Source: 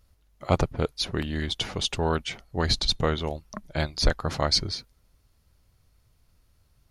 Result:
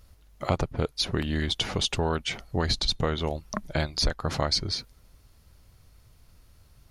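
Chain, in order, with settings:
downward compressor 3 to 1, threshold −33 dBFS, peak gain reduction 14 dB
level +7.5 dB

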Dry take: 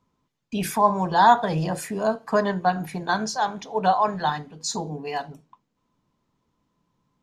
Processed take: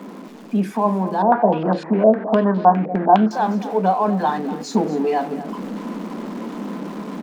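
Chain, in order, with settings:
converter with a step at zero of −30.5 dBFS
elliptic high-pass filter 200 Hz, stop band 40 dB
spectral tilt −4.5 dB per octave
speech leveller within 4 dB 0.5 s
surface crackle 180 per second −40 dBFS
single-tap delay 239 ms −14.5 dB
0:01.22–0:03.31: low-pass on a step sequencer 9.8 Hz 560–4,100 Hz

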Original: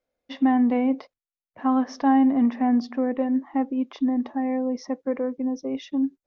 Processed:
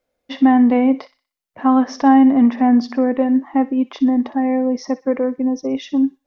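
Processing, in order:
delay with a high-pass on its return 61 ms, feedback 35%, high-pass 1,600 Hz, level −13 dB
level +7.5 dB

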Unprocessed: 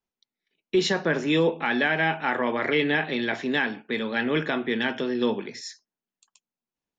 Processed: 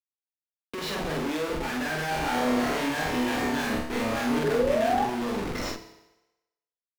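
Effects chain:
comparator with hysteresis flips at −36.5 dBFS
high-shelf EQ 5,400 Hz −8.5 dB
0:02.05–0:04.39: flutter between parallel walls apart 4.9 metres, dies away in 0.56 s
0:04.43–0:05.05: sound drawn into the spectrogram rise 410–860 Hz −22 dBFS
parametric band 110 Hz −6 dB 0.86 octaves
double-tracking delay 45 ms −2 dB
feedback delay network reverb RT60 1 s, low-frequency decay 0.75×, high-frequency decay 0.95×, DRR 8.5 dB
pitch vibrato 1.3 Hz 32 cents
level −5 dB

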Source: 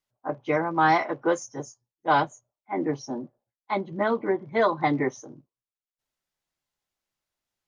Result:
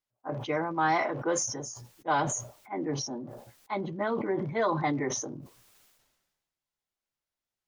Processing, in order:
level that may fall only so fast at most 43 dB per second
level −6 dB

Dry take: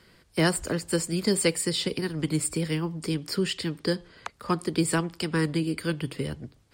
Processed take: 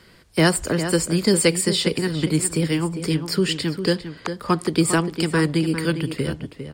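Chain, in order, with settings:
slap from a distant wall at 69 metres, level −9 dB
level +6 dB

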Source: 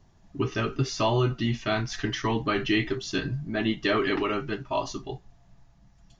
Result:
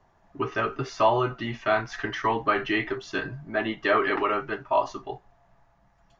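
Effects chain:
three-way crossover with the lows and the highs turned down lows −15 dB, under 480 Hz, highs −16 dB, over 2,000 Hz
level +7 dB

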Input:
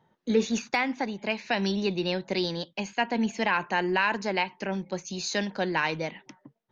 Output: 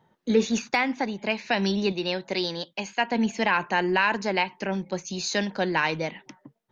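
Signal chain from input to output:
0:01.92–0:03.12: low-shelf EQ 270 Hz −8 dB
level +2.5 dB

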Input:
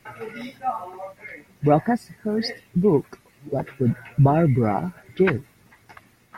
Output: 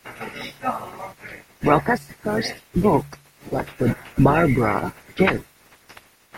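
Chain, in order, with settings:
ceiling on every frequency bin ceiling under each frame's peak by 18 dB
hum removal 71.41 Hz, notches 2
level +1.5 dB

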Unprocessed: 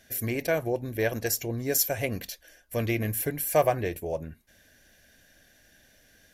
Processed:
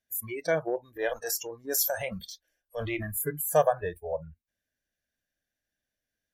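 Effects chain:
noise reduction from a noise print of the clip's start 28 dB
0:00.67–0:03.07: transient designer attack −6 dB, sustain +5 dB

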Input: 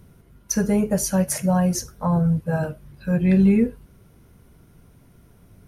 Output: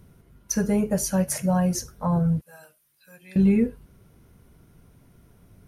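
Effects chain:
0:02.41–0:03.36: first difference
level −2.5 dB

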